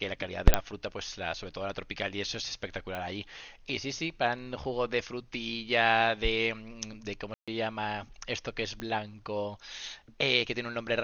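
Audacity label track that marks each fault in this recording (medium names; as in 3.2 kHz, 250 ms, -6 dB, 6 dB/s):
0.540000	0.540000	pop -5 dBFS
2.950000	2.950000	pop -22 dBFS
7.340000	7.480000	dropout 136 ms
8.800000	8.800000	pop -22 dBFS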